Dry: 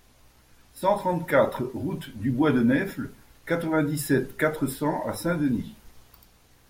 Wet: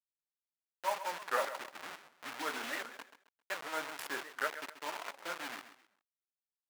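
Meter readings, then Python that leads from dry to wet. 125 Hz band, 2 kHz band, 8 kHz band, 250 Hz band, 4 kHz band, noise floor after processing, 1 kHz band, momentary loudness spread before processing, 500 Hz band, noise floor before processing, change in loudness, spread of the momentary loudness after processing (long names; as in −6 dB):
−39.0 dB, −7.5 dB, −8.0 dB, −28.5 dB, −2.0 dB, below −85 dBFS, −8.5 dB, 10 LU, −17.0 dB, −58 dBFS, −14.0 dB, 13 LU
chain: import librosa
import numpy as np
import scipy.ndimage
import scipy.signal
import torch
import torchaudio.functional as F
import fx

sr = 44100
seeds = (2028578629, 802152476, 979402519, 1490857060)

p1 = fx.delta_hold(x, sr, step_db=-23.0)
p2 = scipy.signal.sosfilt(scipy.signal.butter(2, 1200.0, 'highpass', fs=sr, output='sos'), p1)
p3 = fx.high_shelf(p2, sr, hz=3100.0, db=-11.0)
p4 = p3 + fx.echo_feedback(p3, sr, ms=133, feedback_pct=29, wet_db=-12.0, dry=0)
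p5 = fx.record_warp(p4, sr, rpm=78.0, depth_cents=250.0)
y = p5 * librosa.db_to_amplitude(-2.0)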